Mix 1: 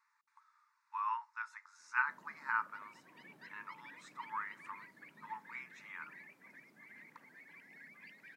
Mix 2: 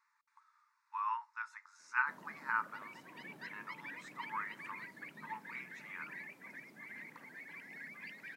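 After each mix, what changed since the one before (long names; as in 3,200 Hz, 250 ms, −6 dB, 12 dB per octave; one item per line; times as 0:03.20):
background +7.0 dB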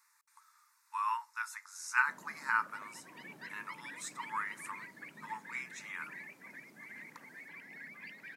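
speech: remove head-to-tape spacing loss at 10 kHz 27 dB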